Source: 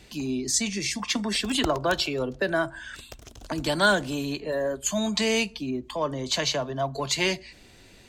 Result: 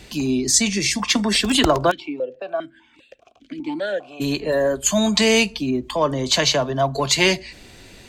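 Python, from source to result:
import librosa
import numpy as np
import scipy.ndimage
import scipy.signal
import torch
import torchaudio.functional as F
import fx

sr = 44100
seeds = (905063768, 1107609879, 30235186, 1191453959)

y = fx.vowel_held(x, sr, hz=5.0, at=(1.9, 4.2), fade=0.02)
y = F.gain(torch.from_numpy(y), 8.0).numpy()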